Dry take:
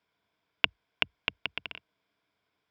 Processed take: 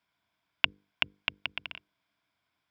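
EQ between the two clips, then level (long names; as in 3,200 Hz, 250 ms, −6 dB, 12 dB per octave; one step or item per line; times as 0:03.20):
parametric band 450 Hz −11 dB 0.54 octaves
mains-hum notches 50/100/150/200/250/300/350/400/450/500 Hz
0.0 dB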